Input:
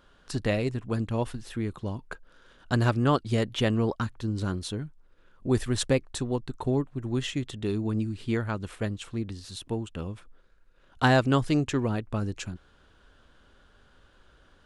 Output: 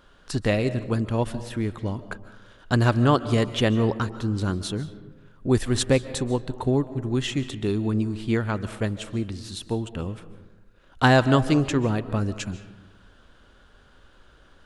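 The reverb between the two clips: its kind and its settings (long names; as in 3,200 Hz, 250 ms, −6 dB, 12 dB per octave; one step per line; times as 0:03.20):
comb and all-pass reverb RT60 1.2 s, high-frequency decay 0.45×, pre-delay 105 ms, DRR 13.5 dB
level +4 dB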